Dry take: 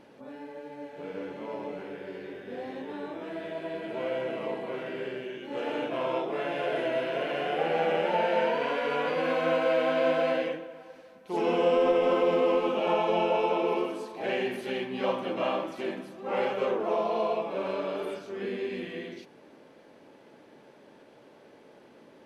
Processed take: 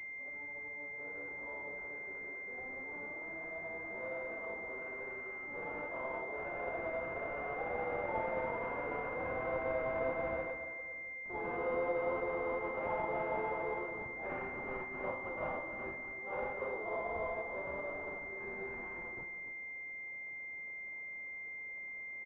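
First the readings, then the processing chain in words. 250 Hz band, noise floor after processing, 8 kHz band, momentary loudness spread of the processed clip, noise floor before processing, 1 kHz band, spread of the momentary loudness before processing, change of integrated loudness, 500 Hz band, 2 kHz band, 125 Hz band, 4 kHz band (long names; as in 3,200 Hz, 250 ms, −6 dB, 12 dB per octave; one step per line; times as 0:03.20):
−14.0 dB, −45 dBFS, can't be measured, 7 LU, −55 dBFS, −9.5 dB, 14 LU, −10.0 dB, −11.5 dB, −1.5 dB, −7.5 dB, below −25 dB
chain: first difference
flanger 0.16 Hz, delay 4.6 ms, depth 7.3 ms, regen −63%
repeating echo 282 ms, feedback 30%, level −11 dB
switching amplifier with a slow clock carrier 2,100 Hz
level +15 dB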